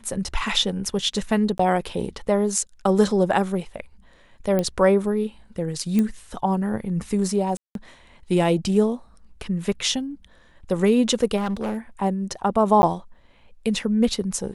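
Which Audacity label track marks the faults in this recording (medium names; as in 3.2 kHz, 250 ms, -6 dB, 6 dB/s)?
1.580000	1.590000	dropout 14 ms
4.590000	4.590000	pop -11 dBFS
5.990000	5.990000	pop -11 dBFS
7.570000	7.750000	dropout 182 ms
11.360000	11.770000	clipped -21.5 dBFS
12.820000	12.830000	dropout 10 ms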